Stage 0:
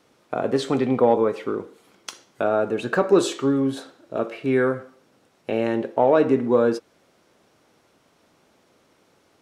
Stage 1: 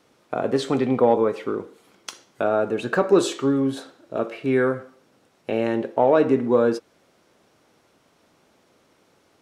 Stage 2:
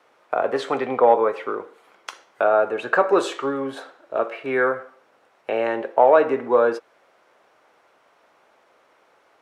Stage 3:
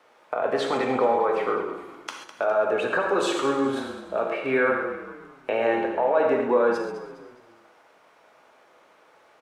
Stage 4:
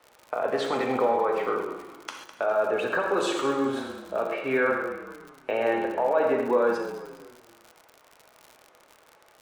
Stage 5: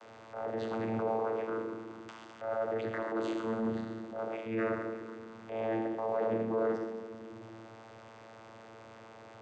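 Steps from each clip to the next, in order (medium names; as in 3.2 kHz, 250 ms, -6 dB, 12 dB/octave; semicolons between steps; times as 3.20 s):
no audible change
three-band isolator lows -20 dB, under 490 Hz, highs -13 dB, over 2.5 kHz; trim +6.5 dB
peak limiter -15 dBFS, peak gain reduction 12 dB; on a send: frequency-shifting echo 205 ms, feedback 39%, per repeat -31 Hz, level -11.5 dB; on the sum: gated-style reverb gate 160 ms flat, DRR 2.5 dB
crackle 80 per s -34 dBFS; trim -2 dB
jump at every zero crossing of -36 dBFS; vocoder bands 16, saw 112 Hz; transient shaper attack -8 dB, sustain -2 dB; trim -7 dB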